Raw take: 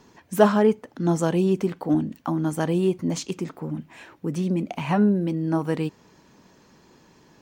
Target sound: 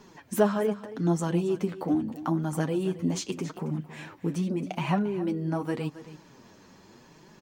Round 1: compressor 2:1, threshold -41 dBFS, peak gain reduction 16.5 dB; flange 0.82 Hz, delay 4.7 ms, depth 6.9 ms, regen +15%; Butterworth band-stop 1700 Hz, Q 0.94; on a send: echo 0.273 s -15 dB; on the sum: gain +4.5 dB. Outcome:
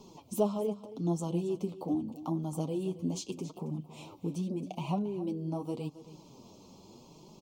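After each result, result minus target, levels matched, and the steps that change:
2000 Hz band -11.5 dB; compressor: peak gain reduction +5.5 dB
remove: Butterworth band-stop 1700 Hz, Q 0.94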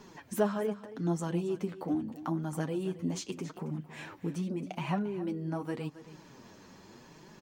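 compressor: peak gain reduction +5.5 dB
change: compressor 2:1, threshold -29.5 dBFS, peak gain reduction 11 dB

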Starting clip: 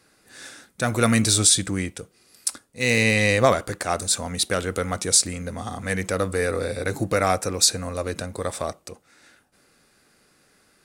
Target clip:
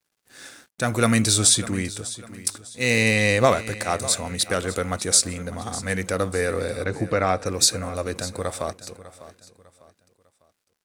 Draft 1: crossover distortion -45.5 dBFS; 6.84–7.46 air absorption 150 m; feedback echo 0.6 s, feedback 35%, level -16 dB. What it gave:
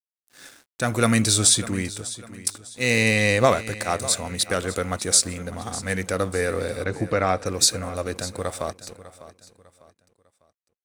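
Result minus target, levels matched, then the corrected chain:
crossover distortion: distortion +9 dB
crossover distortion -55 dBFS; 6.84–7.46 air absorption 150 m; feedback echo 0.6 s, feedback 35%, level -16 dB

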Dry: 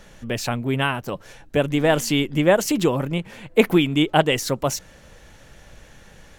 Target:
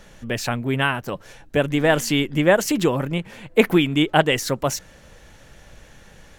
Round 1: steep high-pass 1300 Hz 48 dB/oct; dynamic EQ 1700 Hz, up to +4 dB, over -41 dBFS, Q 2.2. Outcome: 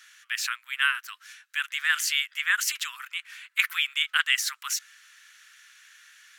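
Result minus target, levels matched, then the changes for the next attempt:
1000 Hz band -5.5 dB
remove: steep high-pass 1300 Hz 48 dB/oct

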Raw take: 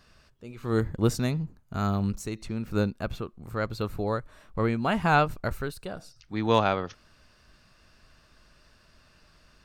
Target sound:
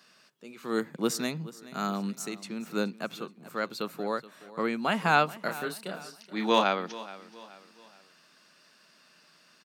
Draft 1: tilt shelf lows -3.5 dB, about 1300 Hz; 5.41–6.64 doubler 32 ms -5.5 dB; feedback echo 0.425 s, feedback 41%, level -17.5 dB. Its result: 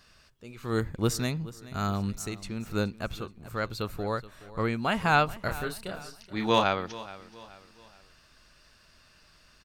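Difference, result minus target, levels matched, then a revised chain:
125 Hz band +8.0 dB
steep high-pass 160 Hz 48 dB/oct; tilt shelf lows -3.5 dB, about 1300 Hz; 5.41–6.64 doubler 32 ms -5.5 dB; feedback echo 0.425 s, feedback 41%, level -17.5 dB

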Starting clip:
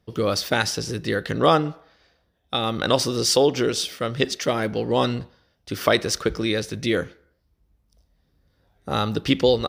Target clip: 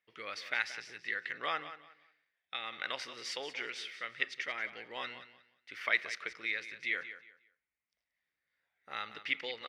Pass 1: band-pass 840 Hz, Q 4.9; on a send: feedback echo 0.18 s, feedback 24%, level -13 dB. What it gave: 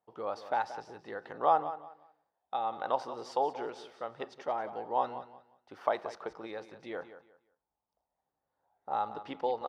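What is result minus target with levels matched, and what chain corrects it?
2000 Hz band -14.0 dB
band-pass 2100 Hz, Q 4.9; on a send: feedback echo 0.18 s, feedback 24%, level -13 dB

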